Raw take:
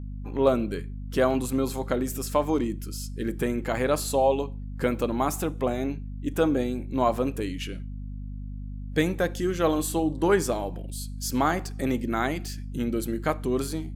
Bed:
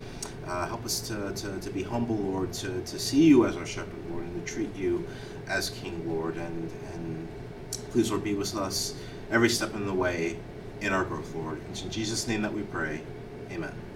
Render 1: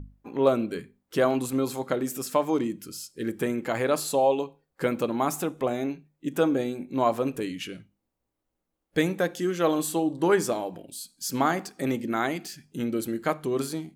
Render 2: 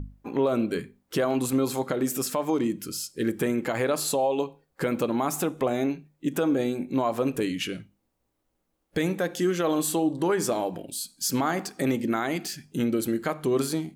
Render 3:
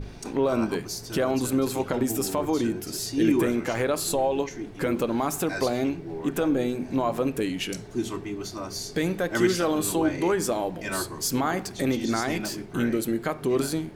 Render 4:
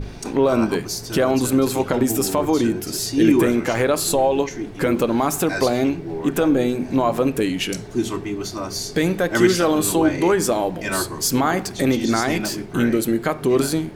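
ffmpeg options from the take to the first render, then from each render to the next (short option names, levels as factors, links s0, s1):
-af "bandreject=f=50:t=h:w=6,bandreject=f=100:t=h:w=6,bandreject=f=150:t=h:w=6,bandreject=f=200:t=h:w=6,bandreject=f=250:t=h:w=6"
-filter_complex "[0:a]asplit=2[s0][s1];[s1]acompressor=threshold=0.0316:ratio=6,volume=0.891[s2];[s0][s2]amix=inputs=2:normalize=0,alimiter=limit=0.168:level=0:latency=1:release=91"
-filter_complex "[1:a]volume=0.631[s0];[0:a][s0]amix=inputs=2:normalize=0"
-af "volume=2.11"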